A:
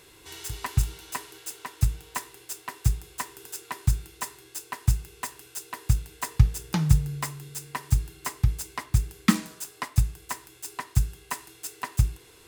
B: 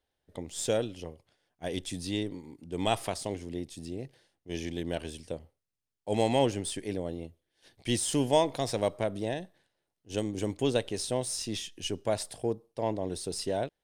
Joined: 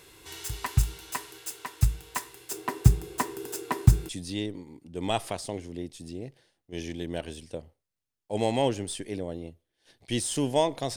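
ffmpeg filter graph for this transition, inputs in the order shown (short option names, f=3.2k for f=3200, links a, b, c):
-filter_complex "[0:a]asettb=1/sr,asplit=3[a][b][c];[a]atrim=end=2.514[d];[b]atrim=start=2.51:end=4.09,asetpts=PTS-STARTPTS,afade=t=in:d=0.004:c=qsin,afade=t=out:st=1.576:d=0.004:c=qsin,equalizer=f=310:t=o:w=2.6:g=14.5[e];[c]atrim=start=4.086[f];[d][e]acrossfade=d=0.004:c1=hsin:c2=qsin[g];[g][f]acrossfade=d=0.004:c1=qsin:c2=hsin,apad=whole_dur=10.96,atrim=end=10.96,atrim=end=4.092[h];[1:a]atrim=start=1.858:end=8.73[i];[h][i]acrossfade=d=0.004:c1=hsin:c2=hsin"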